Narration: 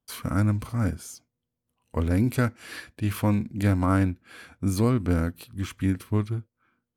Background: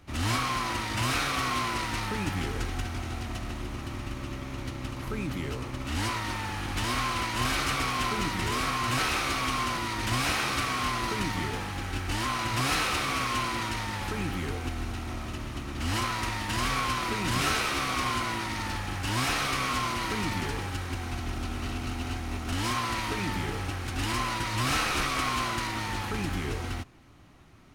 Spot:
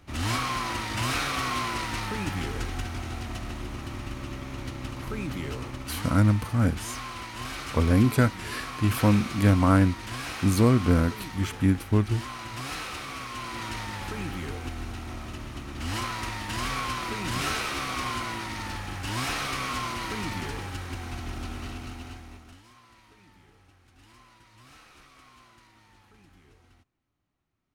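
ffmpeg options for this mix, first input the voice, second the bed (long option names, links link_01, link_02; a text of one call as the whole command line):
ffmpeg -i stem1.wav -i stem2.wav -filter_complex "[0:a]adelay=5800,volume=2.5dB[link_01];[1:a]volume=6dB,afade=type=out:start_time=5.65:duration=0.4:silence=0.398107,afade=type=in:start_time=13.35:duration=0.4:silence=0.501187,afade=type=out:start_time=21.48:duration=1.14:silence=0.0630957[link_02];[link_01][link_02]amix=inputs=2:normalize=0" out.wav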